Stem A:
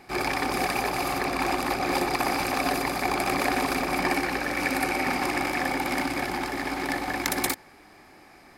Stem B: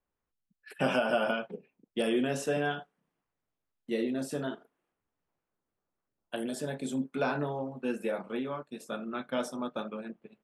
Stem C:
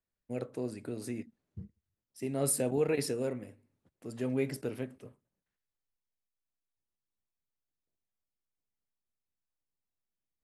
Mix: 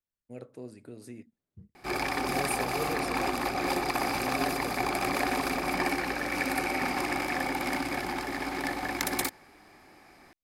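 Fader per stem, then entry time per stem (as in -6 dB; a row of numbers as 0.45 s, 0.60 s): -3.5 dB, mute, -6.5 dB; 1.75 s, mute, 0.00 s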